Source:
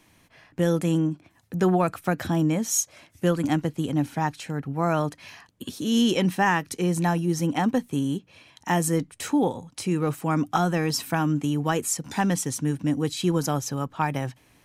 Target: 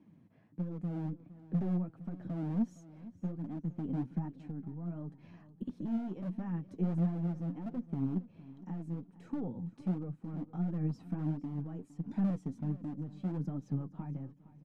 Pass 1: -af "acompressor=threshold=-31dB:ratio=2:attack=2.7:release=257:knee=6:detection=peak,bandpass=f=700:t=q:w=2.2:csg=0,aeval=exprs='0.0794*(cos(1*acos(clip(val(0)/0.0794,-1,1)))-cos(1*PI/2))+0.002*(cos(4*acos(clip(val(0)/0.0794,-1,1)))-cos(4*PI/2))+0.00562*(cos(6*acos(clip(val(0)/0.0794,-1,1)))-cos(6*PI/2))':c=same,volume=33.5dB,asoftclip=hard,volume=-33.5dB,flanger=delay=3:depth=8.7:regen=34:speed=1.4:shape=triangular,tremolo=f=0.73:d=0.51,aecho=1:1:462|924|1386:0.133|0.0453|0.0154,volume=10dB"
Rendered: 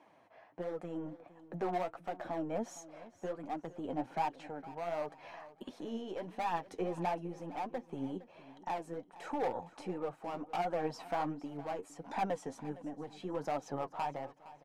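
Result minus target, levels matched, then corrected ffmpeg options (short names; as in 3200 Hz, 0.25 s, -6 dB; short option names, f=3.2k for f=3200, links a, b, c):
500 Hz band +12.0 dB; compressor: peak gain reduction -3 dB
-af "acompressor=threshold=-37.5dB:ratio=2:attack=2.7:release=257:knee=6:detection=peak,bandpass=f=190:t=q:w=2.2:csg=0,aeval=exprs='0.0794*(cos(1*acos(clip(val(0)/0.0794,-1,1)))-cos(1*PI/2))+0.002*(cos(4*acos(clip(val(0)/0.0794,-1,1)))-cos(4*PI/2))+0.00562*(cos(6*acos(clip(val(0)/0.0794,-1,1)))-cos(6*PI/2))':c=same,volume=33.5dB,asoftclip=hard,volume=-33.5dB,flanger=delay=3:depth=8.7:regen=34:speed=1.4:shape=triangular,tremolo=f=0.73:d=0.51,aecho=1:1:462|924|1386:0.133|0.0453|0.0154,volume=10dB"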